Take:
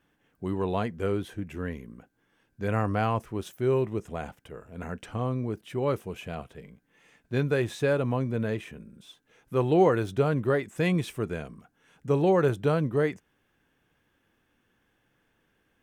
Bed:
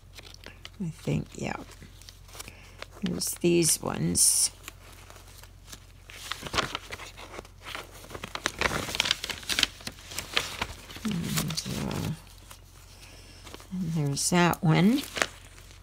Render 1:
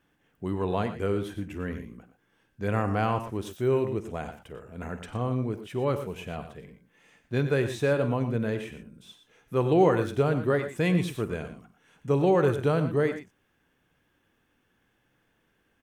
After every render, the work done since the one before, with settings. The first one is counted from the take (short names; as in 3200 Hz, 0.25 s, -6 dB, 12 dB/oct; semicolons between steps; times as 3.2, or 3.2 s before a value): tapped delay 50/94/117 ms -16.5/-13.5/-12.5 dB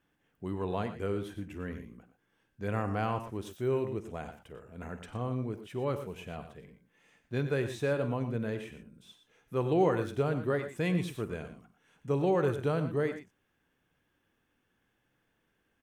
gain -5.5 dB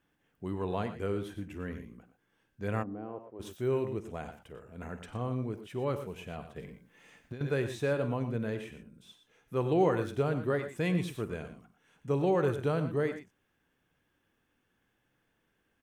2.82–3.39 band-pass 230 Hz -> 600 Hz, Q 2.5; 6.56–7.41 negative-ratio compressor -40 dBFS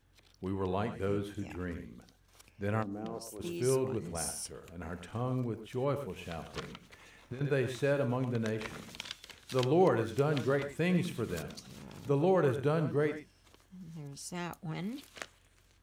add bed -17 dB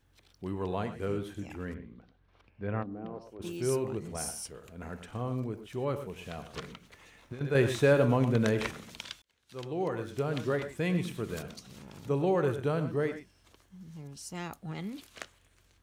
1.74–3.42 air absorption 340 m; 7.55–8.71 gain +7 dB; 9.22–10.53 fade in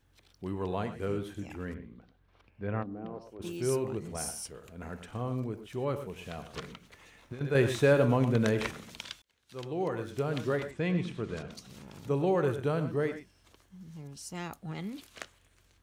10.71–11.51 air absorption 95 m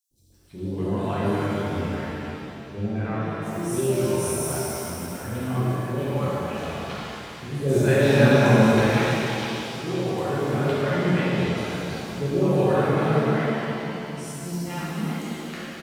three bands offset in time highs, lows, mids 0.11/0.32 s, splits 530/5600 Hz; shimmer reverb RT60 2.9 s, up +7 st, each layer -8 dB, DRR -9.5 dB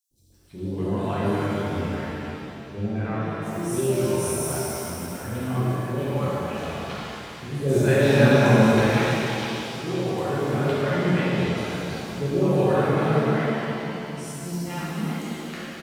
nothing audible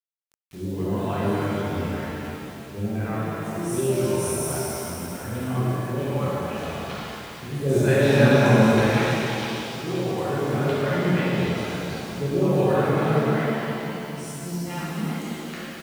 bit-crush 8-bit